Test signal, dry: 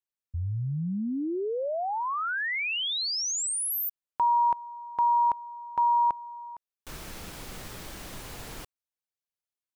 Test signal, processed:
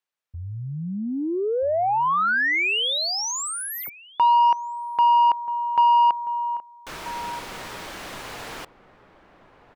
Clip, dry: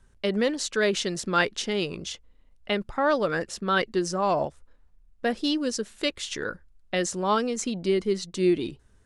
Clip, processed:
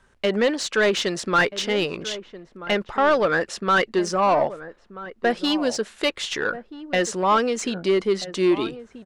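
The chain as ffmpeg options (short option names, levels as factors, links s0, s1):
-filter_complex "[0:a]asplit=2[s0][s1];[s1]highpass=f=720:p=1,volume=7.08,asoftclip=type=tanh:threshold=0.376[s2];[s0][s2]amix=inputs=2:normalize=0,lowpass=f=2300:p=1,volume=0.501,asplit=2[s3][s4];[s4]adelay=1283,volume=0.2,highshelf=f=4000:g=-28.9[s5];[s3][s5]amix=inputs=2:normalize=0"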